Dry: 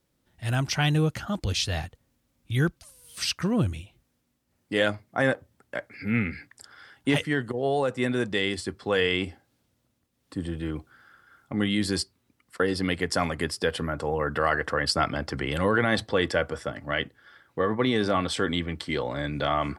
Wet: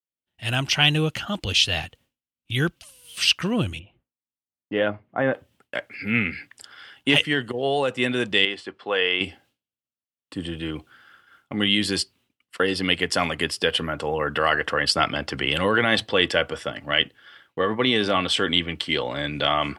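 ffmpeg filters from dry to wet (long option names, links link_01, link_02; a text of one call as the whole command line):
ffmpeg -i in.wav -filter_complex "[0:a]asplit=3[link_01][link_02][link_03];[link_01]afade=type=out:start_time=3.78:duration=0.02[link_04];[link_02]lowpass=1300,afade=type=in:start_time=3.78:duration=0.02,afade=type=out:start_time=5.33:duration=0.02[link_05];[link_03]afade=type=in:start_time=5.33:duration=0.02[link_06];[link_04][link_05][link_06]amix=inputs=3:normalize=0,asettb=1/sr,asplit=3[link_07][link_08][link_09];[link_07]atrim=end=8.454[link_10];[link_08]atrim=start=8.45:end=9.21,asetpts=PTS-STARTPTS,afade=type=in:duration=0.004:curve=qsin,afade=type=out:start_time=0.756:duration=0.004:curve=qsin,bandpass=frequency=910:width_type=q:width=0.64[link_11];[link_09]atrim=start=9.206[link_12];[link_10][link_11]acrossfade=duration=0.004:curve1=hsin:curve2=qsin[link_13];[link_13][link_12]acrossfade=duration=0.004:curve1=qsin:curve2=hsin,equalizer=frequency=2900:width_type=o:width=0.61:gain=12,agate=range=-33dB:threshold=-52dB:ratio=3:detection=peak,lowshelf=frequency=120:gain=-8,volume=2.5dB" out.wav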